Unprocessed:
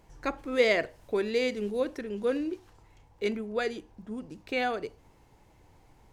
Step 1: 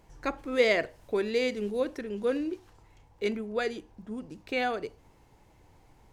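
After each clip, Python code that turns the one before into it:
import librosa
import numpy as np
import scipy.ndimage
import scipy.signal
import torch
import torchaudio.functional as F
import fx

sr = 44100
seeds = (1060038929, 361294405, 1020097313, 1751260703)

y = x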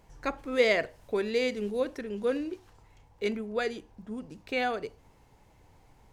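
y = fx.peak_eq(x, sr, hz=330.0, db=-5.0, octaves=0.24)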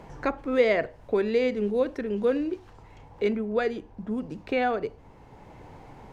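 y = fx.lowpass(x, sr, hz=1500.0, slope=6)
y = fx.band_squash(y, sr, depth_pct=40)
y = y * librosa.db_to_amplitude(5.5)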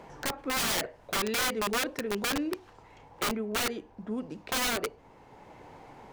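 y = fx.low_shelf(x, sr, hz=170.0, db=-12.0)
y = (np.mod(10.0 ** (24.0 / 20.0) * y + 1.0, 2.0) - 1.0) / 10.0 ** (24.0 / 20.0)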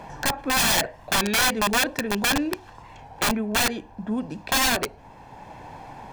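y = x + 0.48 * np.pad(x, (int(1.2 * sr / 1000.0), 0))[:len(x)]
y = fx.record_warp(y, sr, rpm=33.33, depth_cents=100.0)
y = y * librosa.db_to_amplitude(7.5)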